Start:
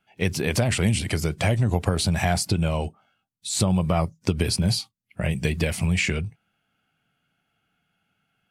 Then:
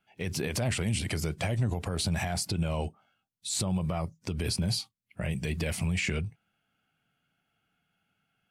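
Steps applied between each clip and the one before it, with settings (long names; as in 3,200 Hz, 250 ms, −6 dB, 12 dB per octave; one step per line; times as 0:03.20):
brickwall limiter −16.5 dBFS, peak gain reduction 10 dB
level −4 dB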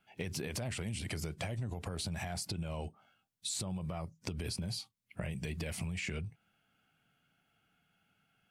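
downward compressor 6 to 1, threshold −38 dBFS, peak gain reduction 13 dB
level +2 dB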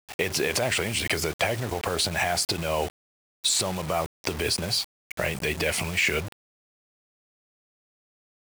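drawn EQ curve 200 Hz 0 dB, 400 Hz +12 dB, 2,000 Hz +14 dB, 11,000 Hz +8 dB
in parallel at −2.5 dB: brickwall limiter −20 dBFS, peak gain reduction 11 dB
on the sum: bit-depth reduction 6 bits, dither none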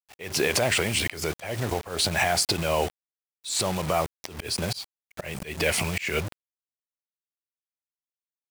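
upward compression, threshold −27 dBFS
volume swells 216 ms
level +2 dB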